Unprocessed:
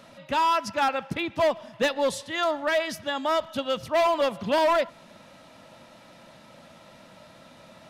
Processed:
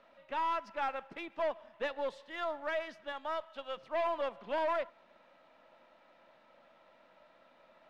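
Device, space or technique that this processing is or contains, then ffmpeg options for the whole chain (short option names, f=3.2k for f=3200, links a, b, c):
crystal radio: -filter_complex "[0:a]highpass=390,lowpass=2.5k,aeval=exprs='if(lt(val(0),0),0.708*val(0),val(0))':c=same,asettb=1/sr,asplit=3[a][b][c];[a]atrim=end=3.124[d];[b]atrim=start=3.12:end=3.77,asetpts=PTS-STARTPTS,afade=t=in:d=0.004:c=qsin,afade=t=out:st=0.646:d=0.004:c=qsin,equalizer=f=89:w=0.4:g=-14[e];[c]atrim=start=3.766[f];[d][e]acrossfade=d=0.004:c1=hsin:c2=qsin[g];[g][f]acrossfade=d=0.004:c1=qsin:c2=hsin,volume=-9dB"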